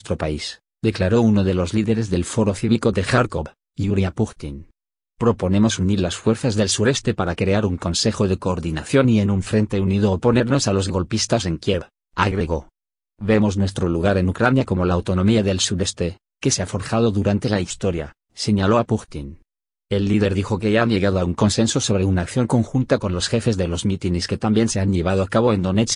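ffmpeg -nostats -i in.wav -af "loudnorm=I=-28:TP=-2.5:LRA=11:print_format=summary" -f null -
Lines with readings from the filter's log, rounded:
Input Integrated:    -20.0 LUFS
Input True Peak:      -2.8 dBTP
Input LRA:             2.5 LU
Input Threshold:     -30.2 LUFS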